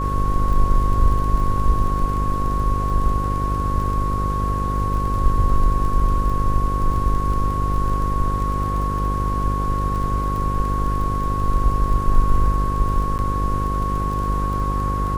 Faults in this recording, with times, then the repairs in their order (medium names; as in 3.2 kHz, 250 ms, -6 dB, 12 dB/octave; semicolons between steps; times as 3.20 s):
buzz 50 Hz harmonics 11 -23 dBFS
crackle 22 per s -27 dBFS
whine 1.1 kHz -24 dBFS
13.18–13.19 s: dropout 9.4 ms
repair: de-click; band-stop 1.1 kHz, Q 30; de-hum 50 Hz, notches 11; interpolate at 13.18 s, 9.4 ms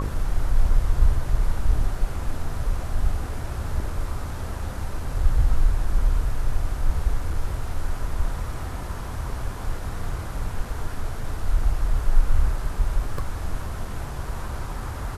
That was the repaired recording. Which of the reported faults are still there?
nothing left